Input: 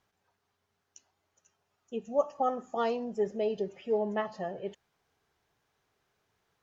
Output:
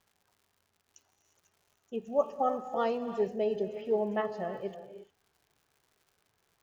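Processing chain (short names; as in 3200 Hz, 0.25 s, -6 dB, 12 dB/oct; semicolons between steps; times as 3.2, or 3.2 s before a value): high shelf 5000 Hz -7.5 dB; non-linear reverb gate 0.38 s rising, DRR 10 dB; crackle 180/s -55 dBFS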